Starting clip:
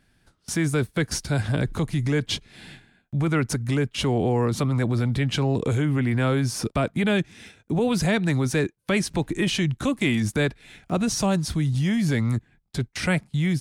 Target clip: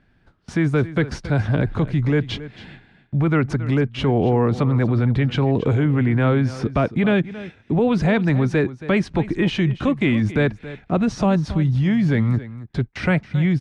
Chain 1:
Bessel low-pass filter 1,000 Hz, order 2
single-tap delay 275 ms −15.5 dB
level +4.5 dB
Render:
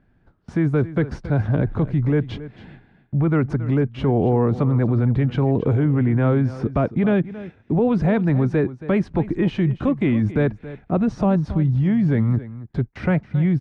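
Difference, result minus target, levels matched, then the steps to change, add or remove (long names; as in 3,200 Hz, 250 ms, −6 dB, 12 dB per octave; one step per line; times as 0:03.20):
2,000 Hz band −6.0 dB
change: Bessel low-pass filter 2,100 Hz, order 2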